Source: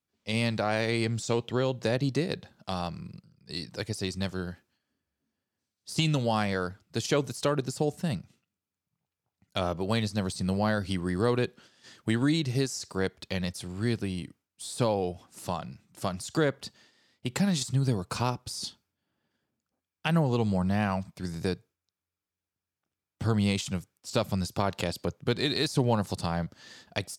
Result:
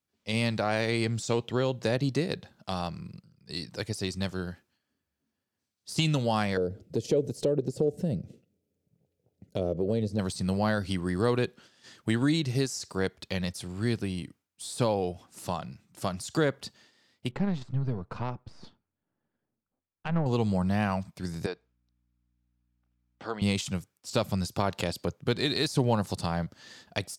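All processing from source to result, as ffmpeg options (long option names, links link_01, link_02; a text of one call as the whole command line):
ffmpeg -i in.wav -filter_complex "[0:a]asettb=1/sr,asplit=3[link_01][link_02][link_03];[link_01]atrim=end=6.574[link_04];[link_02]atrim=start=6.57:end=10.19,asetpts=PTS-STARTPTS,afade=type=in:duration=0.004:curve=qsin,afade=type=out:start_time=3.616:duration=0.004:curve=qsin,lowshelf=frequency=720:width_type=q:width=3:gain=13,acompressor=threshold=-36dB:ratio=2:attack=3.2:release=140:knee=1:detection=peak[link_05];[link_03]atrim=start=10.186[link_06];[link_04][link_05]acrossfade=duration=0.004:curve1=hsin:curve2=qsin[link_07];[link_07][link_06]acrossfade=duration=0.004:curve1=qsin:curve2=hsin,asettb=1/sr,asplit=3[link_08][link_09][link_10];[link_08]atrim=end=17.314[link_11];[link_09]atrim=start=17.31:end=20.26,asetpts=PTS-STARTPTS,afade=type=in:duration=0.004:curve=qsin,afade=type=out:start_time=2.946:duration=0.004:curve=qsin,aeval=exprs='if(lt(val(0),0),0.447*val(0),val(0))':channel_layout=same,adynamicsmooth=sensitivity=0.5:basefreq=1800[link_12];[link_10]atrim=start=20.256[link_13];[link_11][link_12]acrossfade=duration=0.004:curve1=hsin:curve2=qsin[link_14];[link_14][link_13]acrossfade=duration=0.004:curve1=qsin:curve2=hsin,asettb=1/sr,asplit=3[link_15][link_16][link_17];[link_15]atrim=end=21.464[link_18];[link_16]atrim=start=21.46:end=23.42,asetpts=PTS-STARTPTS,afade=type=in:duration=0.004:curve=qsin,afade=type=out:start_time=1.956:duration=0.004:curve=qsin,highpass=480,lowpass=5900,aeval=exprs='val(0)+0.0002*(sin(2*PI*60*n/s)+sin(2*PI*2*60*n/s)/2+sin(2*PI*3*60*n/s)/3+sin(2*PI*4*60*n/s)/4+sin(2*PI*5*60*n/s)/5)':channel_layout=same,aemphasis=mode=reproduction:type=50fm[link_19];[link_17]atrim=start=23.416[link_20];[link_18][link_19]acrossfade=duration=0.004:curve1=hsin:curve2=qsin[link_21];[link_21][link_20]acrossfade=duration=0.004:curve1=qsin:curve2=hsin" out.wav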